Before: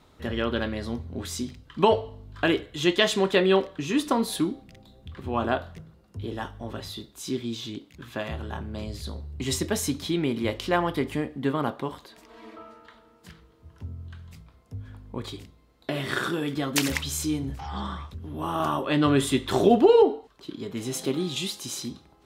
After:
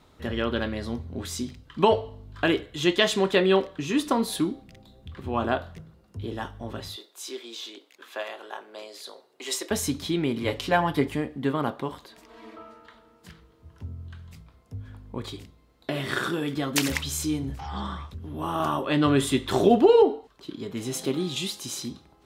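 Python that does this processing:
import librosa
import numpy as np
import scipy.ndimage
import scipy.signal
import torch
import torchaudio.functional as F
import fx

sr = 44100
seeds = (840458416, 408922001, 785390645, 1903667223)

y = fx.highpass(x, sr, hz=420.0, slope=24, at=(6.96, 9.71))
y = fx.comb(y, sr, ms=7.0, depth=0.65, at=(10.4, 11.08))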